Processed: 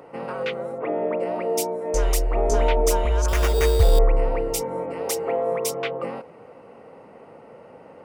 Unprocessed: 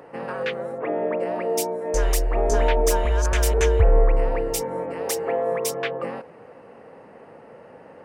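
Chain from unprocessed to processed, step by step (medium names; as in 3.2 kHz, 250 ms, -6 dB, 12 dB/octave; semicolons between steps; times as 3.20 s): band-stop 1.7 kHz, Q 6; 3.28–3.99 s: sample-rate reducer 4.2 kHz, jitter 0%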